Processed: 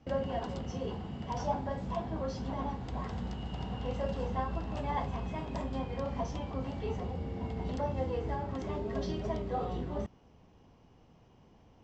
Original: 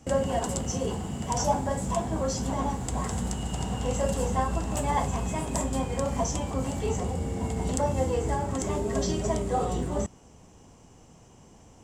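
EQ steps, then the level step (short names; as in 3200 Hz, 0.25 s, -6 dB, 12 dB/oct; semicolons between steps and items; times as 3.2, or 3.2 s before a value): ladder low-pass 5800 Hz, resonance 30%; air absorption 160 m; 0.0 dB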